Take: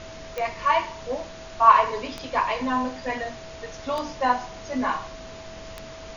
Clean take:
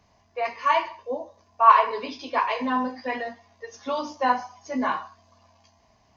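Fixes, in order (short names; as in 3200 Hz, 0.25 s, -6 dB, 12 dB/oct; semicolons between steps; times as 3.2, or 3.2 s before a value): de-click; notch 650 Hz, Q 30; noise print and reduce 22 dB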